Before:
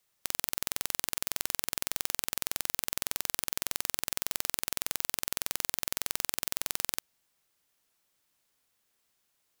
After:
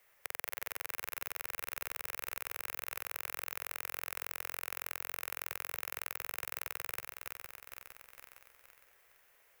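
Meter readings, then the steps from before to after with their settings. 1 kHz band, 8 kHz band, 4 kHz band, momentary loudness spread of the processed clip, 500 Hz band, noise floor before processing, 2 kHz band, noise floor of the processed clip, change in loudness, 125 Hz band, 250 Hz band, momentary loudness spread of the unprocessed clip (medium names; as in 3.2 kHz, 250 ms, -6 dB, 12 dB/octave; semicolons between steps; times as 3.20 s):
-2.5 dB, -12.5 dB, -12.0 dB, 10 LU, -4.5 dB, -76 dBFS, -1.5 dB, -80 dBFS, -7.5 dB, -9.0 dB, -13.0 dB, 1 LU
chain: backward echo that repeats 230 ms, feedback 57%, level -7 dB; graphic EQ 125/250/500/2000/4000/8000 Hz -5/-12/+7/+9/-9/-7 dB; compression 2:1, threshold -55 dBFS, peak gain reduction 15.5 dB; trim +8.5 dB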